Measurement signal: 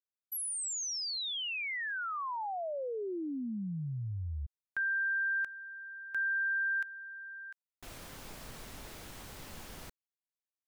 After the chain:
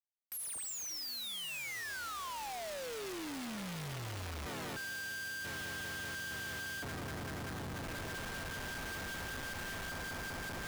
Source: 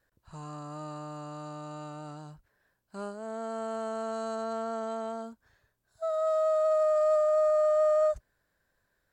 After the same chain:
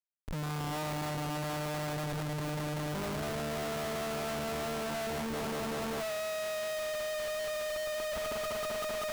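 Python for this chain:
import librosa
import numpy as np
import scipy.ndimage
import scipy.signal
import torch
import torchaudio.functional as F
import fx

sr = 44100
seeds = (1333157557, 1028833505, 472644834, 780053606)

y = fx.echo_swell(x, sr, ms=193, loudest=8, wet_db=-14)
y = fx.schmitt(y, sr, flips_db=-46.0)
y = F.gain(torch.from_numpy(y), -5.0).numpy()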